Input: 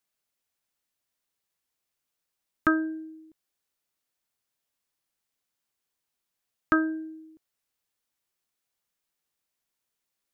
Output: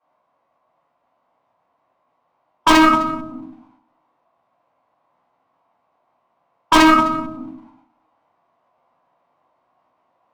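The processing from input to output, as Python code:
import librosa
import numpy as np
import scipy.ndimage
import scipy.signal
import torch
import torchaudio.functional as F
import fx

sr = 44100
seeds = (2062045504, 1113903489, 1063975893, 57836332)

p1 = scipy.signal.sosfilt(scipy.signal.butter(2, 110.0, 'highpass', fs=sr, output='sos'), x)
p2 = 10.0 ** (-24.0 / 20.0) * (np.abs((p1 / 10.0 ** (-24.0 / 20.0) + 3.0) % 4.0 - 2.0) - 1.0)
p3 = p1 + (p2 * librosa.db_to_amplitude(-5.0))
p4 = fx.band_shelf(p3, sr, hz=970.0, db=13.5, octaves=1.3)
p5 = fx.env_lowpass(p4, sr, base_hz=2100.0, full_db=-21.5)
p6 = fx.room_shoebox(p5, sr, seeds[0], volume_m3=110.0, walls='mixed', distance_m=4.6)
p7 = np.clip(p6, -10.0 ** (-7.5 / 20.0), 10.0 ** (-7.5 / 20.0))
p8 = fx.formant_shift(p7, sr, semitones=-4)
p9 = fx.rider(p8, sr, range_db=10, speed_s=0.5)
p10 = p9 + fx.echo_single(p9, sr, ms=257, db=-20.5, dry=0)
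y = p10 * librosa.db_to_amplitude(1.5)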